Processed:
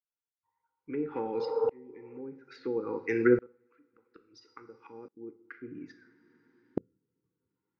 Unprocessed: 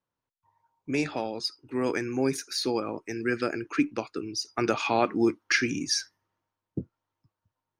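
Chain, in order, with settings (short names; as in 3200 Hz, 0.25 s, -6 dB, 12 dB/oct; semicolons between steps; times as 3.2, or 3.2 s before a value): 1.42–2.15 spectral repair 450–1700 Hz before; treble ducked by the level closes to 510 Hz, closed at -23.5 dBFS; LPF 3300 Hz 12 dB/oct; low shelf 250 Hz -7.5 dB; small resonant body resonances 500/790/1400/2000 Hz, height 11 dB, ringing for 30 ms; 3.46–5.17 flipped gate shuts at -28 dBFS, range -25 dB; Butterworth band-stop 660 Hz, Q 1.4; two-slope reverb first 0.48 s, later 2.4 s, from -18 dB, DRR 9 dB; dB-ramp tremolo swelling 0.59 Hz, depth 31 dB; gain +8 dB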